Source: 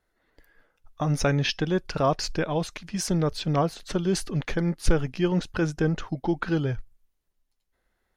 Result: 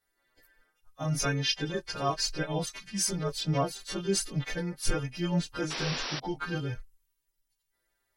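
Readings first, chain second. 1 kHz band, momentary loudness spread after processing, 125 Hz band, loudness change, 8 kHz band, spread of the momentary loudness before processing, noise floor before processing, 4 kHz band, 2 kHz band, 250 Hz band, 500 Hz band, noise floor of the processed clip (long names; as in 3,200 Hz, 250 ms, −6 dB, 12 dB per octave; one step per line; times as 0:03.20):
−5.0 dB, 6 LU, −6.0 dB, −4.5 dB, +2.5 dB, 5 LU, −76 dBFS, +1.5 dB, −3.0 dB, −7.0 dB, −7.0 dB, −80 dBFS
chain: every partial snapped to a pitch grid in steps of 2 semitones
multi-voice chorus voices 4, 0.35 Hz, delay 11 ms, depth 4.4 ms
sound drawn into the spectrogram noise, 0:05.70–0:06.20, 230–5,900 Hz −32 dBFS
level −3.5 dB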